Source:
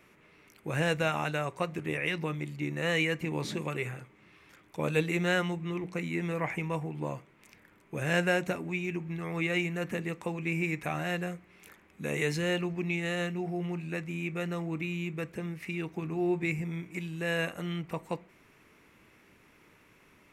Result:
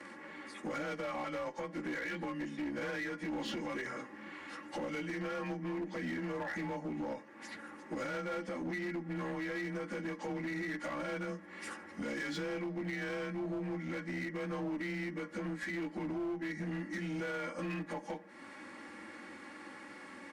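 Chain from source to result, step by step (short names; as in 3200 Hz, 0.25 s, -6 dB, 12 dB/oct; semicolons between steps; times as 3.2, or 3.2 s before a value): inharmonic rescaling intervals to 92%; HPF 170 Hz 12 dB/oct; high shelf 6500 Hz -8.5 dB; comb 3.6 ms, depth 91%; compressor 3:1, threshold -48 dBFS, peak gain reduction 19.5 dB; limiter -41 dBFS, peak gain reduction 8 dB; one-sided clip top -48 dBFS, bottom -44 dBFS; gain +12 dB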